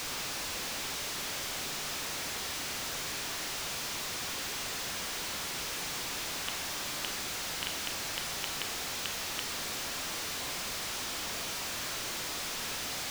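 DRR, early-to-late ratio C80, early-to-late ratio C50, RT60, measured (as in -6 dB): 5.5 dB, 13.0 dB, 8.5 dB, 0.60 s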